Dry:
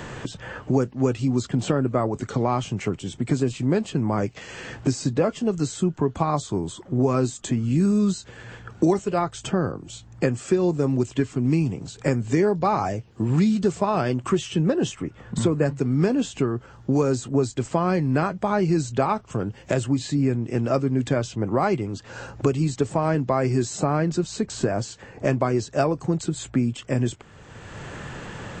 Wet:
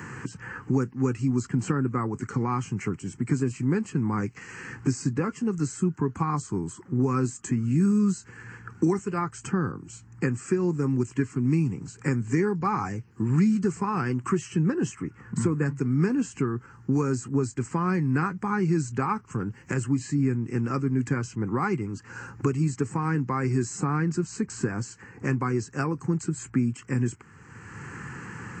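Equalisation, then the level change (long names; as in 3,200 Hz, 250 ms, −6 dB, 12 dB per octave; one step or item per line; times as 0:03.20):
high-pass filter 100 Hz
phaser with its sweep stopped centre 1,500 Hz, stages 4
0.0 dB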